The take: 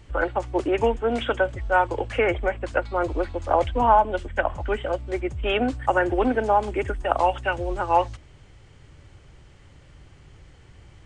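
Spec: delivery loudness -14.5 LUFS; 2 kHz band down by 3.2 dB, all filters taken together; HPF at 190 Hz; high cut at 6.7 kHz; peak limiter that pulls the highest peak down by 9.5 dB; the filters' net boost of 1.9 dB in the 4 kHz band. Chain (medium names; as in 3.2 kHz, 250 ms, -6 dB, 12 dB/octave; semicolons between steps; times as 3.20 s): high-pass 190 Hz; low-pass 6.7 kHz; peaking EQ 2 kHz -6.5 dB; peaking EQ 4 kHz +7 dB; trim +12.5 dB; peak limiter -2.5 dBFS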